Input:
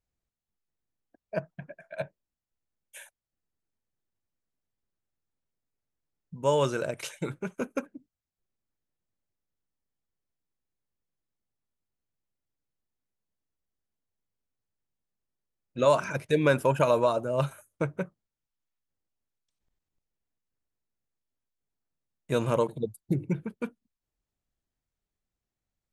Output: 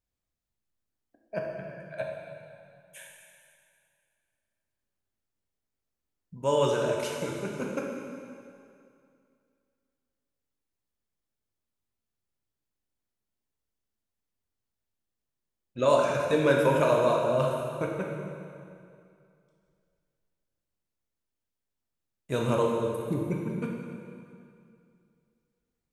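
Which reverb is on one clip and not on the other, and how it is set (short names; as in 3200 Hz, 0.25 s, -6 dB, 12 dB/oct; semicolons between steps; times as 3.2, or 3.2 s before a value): plate-style reverb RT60 2.4 s, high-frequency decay 0.9×, DRR -1 dB; gain -2.5 dB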